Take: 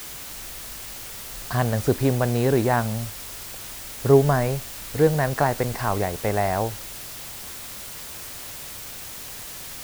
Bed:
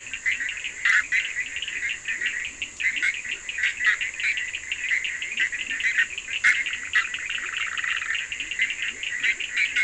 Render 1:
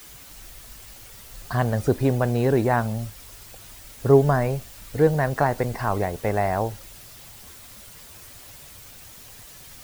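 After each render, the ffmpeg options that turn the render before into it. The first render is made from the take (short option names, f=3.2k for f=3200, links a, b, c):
-af "afftdn=nr=9:nf=-37"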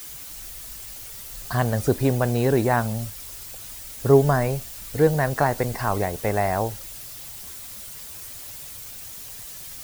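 -af "highshelf=f=4.2k:g=8"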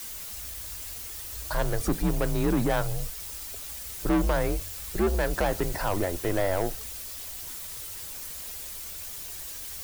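-af "asoftclip=type=tanh:threshold=-19.5dB,afreqshift=-92"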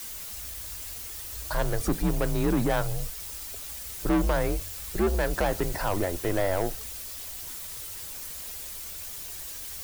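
-af anull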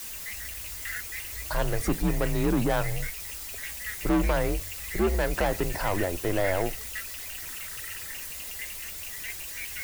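-filter_complex "[1:a]volume=-17dB[a];[0:a][a]amix=inputs=2:normalize=0"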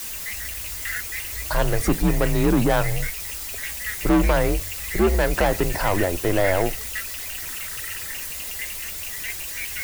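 -af "volume=6dB"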